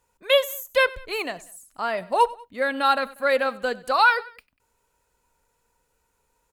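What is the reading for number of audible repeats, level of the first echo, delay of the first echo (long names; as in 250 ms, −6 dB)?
2, −21.0 dB, 96 ms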